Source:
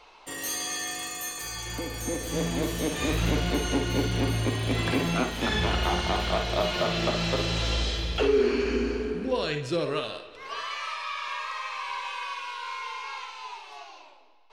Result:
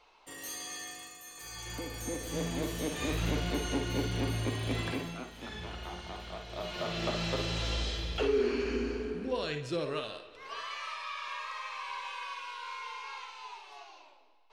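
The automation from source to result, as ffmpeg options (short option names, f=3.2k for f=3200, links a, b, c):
-af "volume=10.5dB,afade=t=out:st=0.81:d=0.43:silence=0.473151,afade=t=in:st=1.24:d=0.46:silence=0.316228,afade=t=out:st=4.75:d=0.42:silence=0.316228,afade=t=in:st=6.48:d=0.65:silence=0.316228"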